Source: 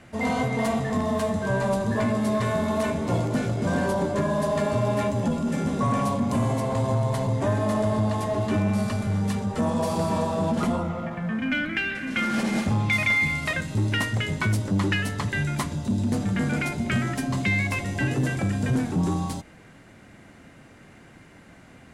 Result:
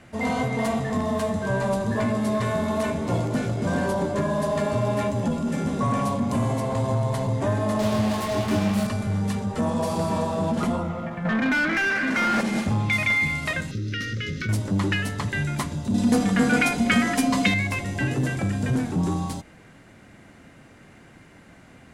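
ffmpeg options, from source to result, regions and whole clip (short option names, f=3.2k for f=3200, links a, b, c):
-filter_complex "[0:a]asettb=1/sr,asplit=3[a][b][c];[a]atrim=end=7.794[d];[b]atrim=start=7.79:end=8.87,asetpts=PTS-STARTPTS,afade=t=in:d=0.004:c=qsin,afade=t=out:st=1.076:d=0.004:c=qsin,acrusher=bits=4:mix=0:aa=0.5,asplit=2[e][f];[f]adelay=24,volume=-5dB[g];[e][g]amix=inputs=2:normalize=0,atrim=end_sample=47628[h];[c]atrim=start=8.866[i];[d][h]acrossfade=d=0.004:c1=hsin:c2=qsin[j];[j][i]acrossfade=d=0.004:c1=qsin:c2=hsin,asettb=1/sr,asplit=3[k][l][m];[k]atrim=end=11.254[n];[l]atrim=start=11.25:end=12.41,asetpts=PTS-STARTPTS,afade=t=in:d=0.004:c=qsin,afade=t=out:st=1.156:d=0.004:c=qsin,equalizer=f=3.1k:t=o:w=0.69:g=-9.5,asplit=2[o][p];[p]highpass=f=720:p=1,volume=24dB,asoftclip=type=tanh:threshold=-14dB[q];[o][q]amix=inputs=2:normalize=0,lowpass=f=2k:p=1,volume=-6dB[r];[m]atrim=start=12.406[s];[n][r]acrossfade=d=0.004:c1=hsin:c2=qsin[t];[t][s]acrossfade=d=0.004:c1=qsin:c2=hsin,asettb=1/sr,asplit=3[u][v][w];[u]atrim=end=13.714[x];[v]atrim=start=13.71:end=14.49,asetpts=PTS-STARTPTS,afade=t=in:d=0.004:c=qsin,afade=t=out:st=0.776:d=0.004:c=qsin,highshelf=f=6.8k:t=q:w=3:g=-7,acompressor=threshold=-25dB:ratio=5:attack=3.2:release=140:knee=1:detection=peak,asuperstop=centerf=820:order=12:qfactor=1.2[y];[w]atrim=start=14.486[z];[x][y]acrossfade=d=0.004:c1=hsin:c2=qsin[aa];[aa][z]acrossfade=d=0.004:c1=qsin:c2=hsin,asettb=1/sr,asplit=3[ab][ac][ad];[ab]atrim=end=15.944[ae];[ac]atrim=start=15.94:end=17.54,asetpts=PTS-STARTPTS,afade=t=in:d=0.004:c=qsin,afade=t=out:st=1.596:d=0.004:c=qsin,lowshelf=f=230:g=-8,aecho=1:1:4.1:0.79,atrim=end_sample=70560,acontrast=50[af];[ad]atrim=start=17.536[ag];[ae][af]acrossfade=d=0.004:c1=hsin:c2=qsin[ah];[ah][ag]acrossfade=d=0.004:c1=qsin:c2=hsin"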